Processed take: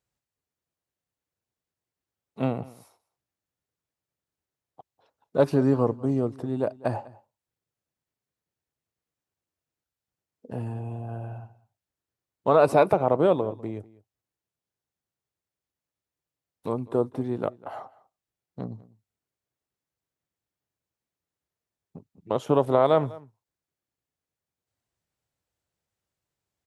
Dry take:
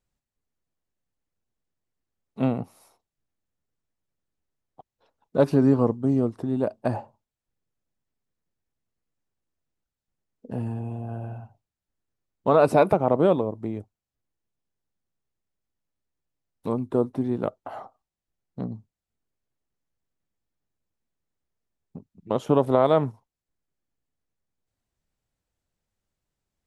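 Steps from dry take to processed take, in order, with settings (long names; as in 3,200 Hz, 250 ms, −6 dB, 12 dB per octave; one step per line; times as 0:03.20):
high-pass filter 83 Hz
parametric band 220 Hz −5.5 dB 0.84 octaves
slap from a distant wall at 34 metres, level −21 dB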